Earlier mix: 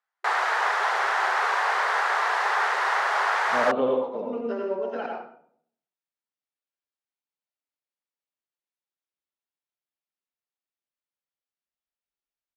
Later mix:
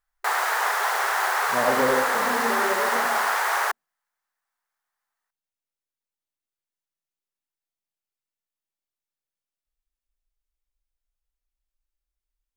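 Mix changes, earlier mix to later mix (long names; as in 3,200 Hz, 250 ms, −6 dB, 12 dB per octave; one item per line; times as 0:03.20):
speech: entry −2.00 s
master: remove band-pass filter 180–4,300 Hz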